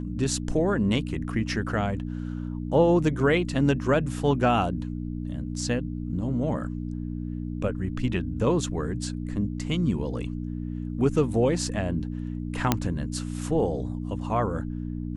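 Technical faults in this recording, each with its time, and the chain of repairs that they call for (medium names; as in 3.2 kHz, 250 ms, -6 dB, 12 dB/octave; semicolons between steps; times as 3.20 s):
hum 60 Hz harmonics 5 -32 dBFS
12.72 s: pop -5 dBFS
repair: de-click; de-hum 60 Hz, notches 5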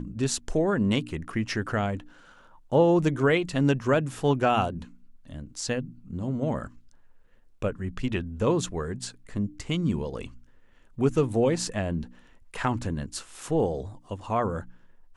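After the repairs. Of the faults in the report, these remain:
nothing left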